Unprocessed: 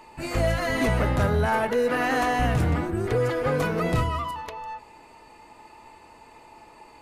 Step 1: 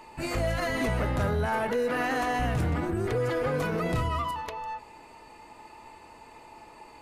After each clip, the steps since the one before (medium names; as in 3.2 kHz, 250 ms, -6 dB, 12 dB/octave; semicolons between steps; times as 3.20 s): peak limiter -20.5 dBFS, peak gain reduction 5 dB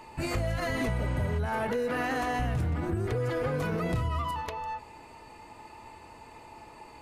spectral replace 0.98–1.36 s, 730–8700 Hz before; peaking EQ 90 Hz +6.5 dB 1.7 oct; compression, threshold -26 dBFS, peak gain reduction 7.5 dB